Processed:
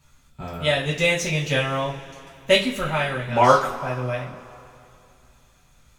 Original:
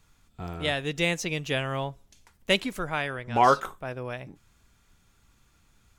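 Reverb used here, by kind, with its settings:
coupled-rooms reverb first 0.27 s, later 2.8 s, from −21 dB, DRR −6.5 dB
level −1.5 dB

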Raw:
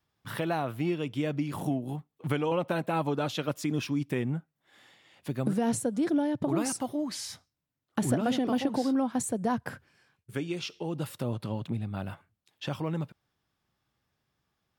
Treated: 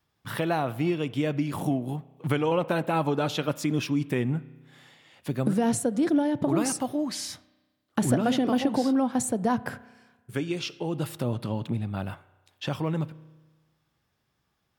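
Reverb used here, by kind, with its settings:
spring reverb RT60 1.3 s, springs 32 ms, chirp 70 ms, DRR 17.5 dB
level +3.5 dB

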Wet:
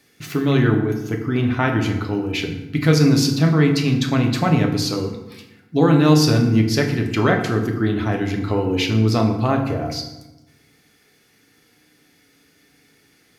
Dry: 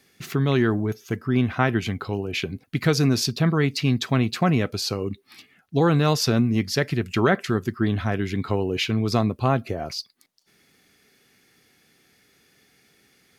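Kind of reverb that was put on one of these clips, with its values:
feedback delay network reverb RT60 1 s, low-frequency decay 1.35×, high-frequency decay 0.65×, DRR 2 dB
level +1 dB

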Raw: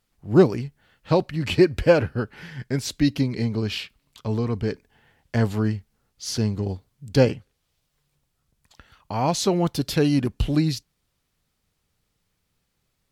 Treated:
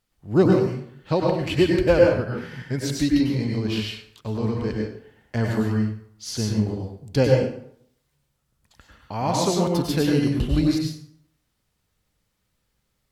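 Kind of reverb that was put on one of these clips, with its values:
dense smooth reverb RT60 0.64 s, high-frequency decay 0.7×, pre-delay 85 ms, DRR −1 dB
level −3 dB

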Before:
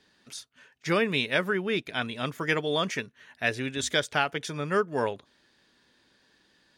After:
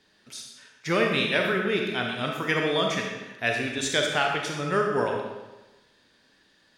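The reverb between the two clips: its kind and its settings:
comb and all-pass reverb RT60 1.1 s, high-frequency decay 0.9×, pre-delay 5 ms, DRR 0.5 dB

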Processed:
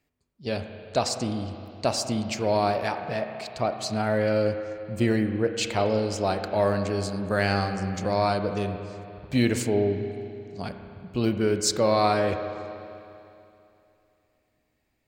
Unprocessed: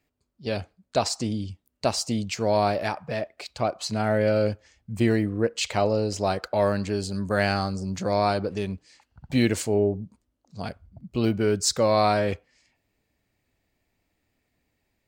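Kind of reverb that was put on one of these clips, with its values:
spring reverb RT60 2.8 s, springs 32/50 ms, chirp 55 ms, DRR 6.5 dB
level −1 dB

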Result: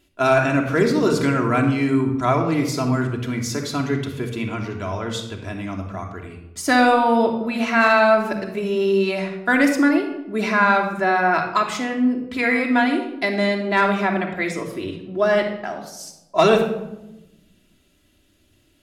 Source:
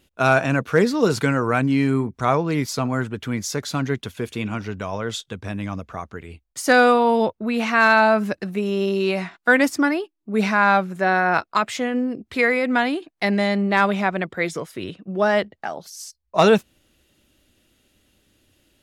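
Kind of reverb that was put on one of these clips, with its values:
rectangular room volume 3,800 cubic metres, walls furnished, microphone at 3 metres
level −2 dB

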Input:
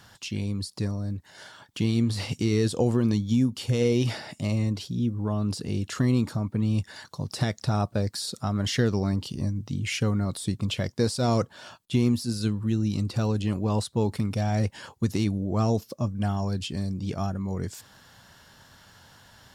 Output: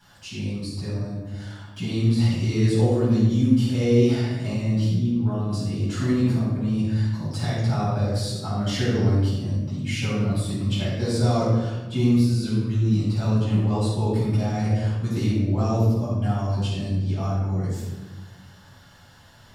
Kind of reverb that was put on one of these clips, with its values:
rectangular room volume 660 cubic metres, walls mixed, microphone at 8.1 metres
level −13.5 dB

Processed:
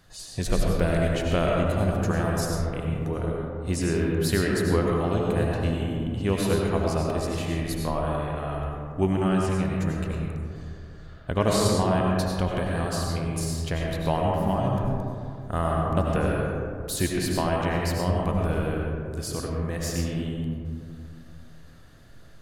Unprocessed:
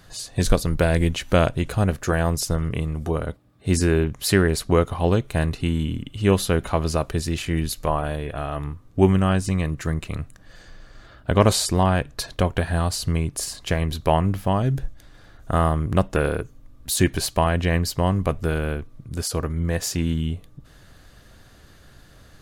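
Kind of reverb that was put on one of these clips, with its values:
comb and all-pass reverb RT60 2.4 s, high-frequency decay 0.3×, pre-delay 55 ms, DRR −2 dB
level −7.5 dB

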